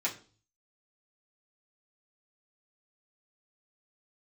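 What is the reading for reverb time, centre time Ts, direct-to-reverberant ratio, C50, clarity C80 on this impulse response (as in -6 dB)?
0.40 s, 15 ms, -7.5 dB, 13.0 dB, 17.5 dB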